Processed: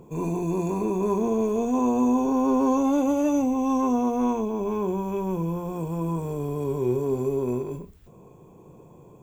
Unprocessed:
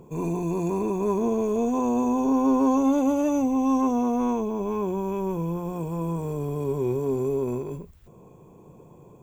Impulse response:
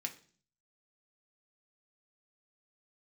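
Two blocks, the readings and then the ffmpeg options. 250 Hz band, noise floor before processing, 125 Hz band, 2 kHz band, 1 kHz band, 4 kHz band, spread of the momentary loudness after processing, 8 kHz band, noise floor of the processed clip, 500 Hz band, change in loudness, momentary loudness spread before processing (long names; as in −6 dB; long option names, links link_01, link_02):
0.0 dB, −50 dBFS, +0.5 dB, +0.5 dB, +0.5 dB, can't be measured, 8 LU, +0.5 dB, −50 dBFS, +0.5 dB, 0.0 dB, 9 LU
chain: -filter_complex "[0:a]asplit=2[link_01][link_02];[1:a]atrim=start_sample=2205,asetrate=61740,aresample=44100,adelay=25[link_03];[link_02][link_03]afir=irnorm=-1:irlink=0,volume=-5dB[link_04];[link_01][link_04]amix=inputs=2:normalize=0"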